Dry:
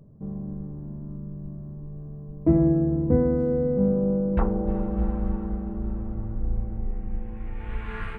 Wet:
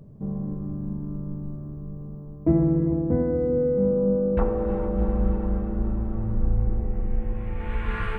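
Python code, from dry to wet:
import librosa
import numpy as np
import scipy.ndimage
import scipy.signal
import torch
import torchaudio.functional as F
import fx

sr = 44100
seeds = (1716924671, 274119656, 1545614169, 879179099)

y = fx.rider(x, sr, range_db=4, speed_s=2.0)
y = fx.rev_gated(y, sr, seeds[0], gate_ms=480, shape='flat', drr_db=3.5)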